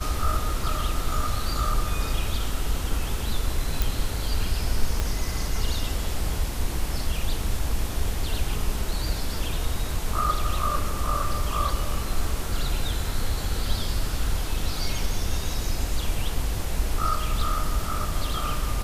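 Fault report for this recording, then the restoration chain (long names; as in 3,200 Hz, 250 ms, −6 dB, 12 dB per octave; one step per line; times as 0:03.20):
0:03.82: click
0:05.00: click −12 dBFS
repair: click removal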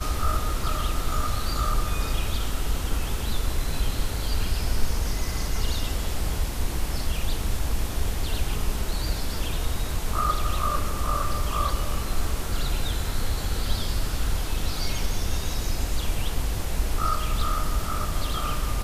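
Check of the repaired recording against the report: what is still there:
0:05.00: click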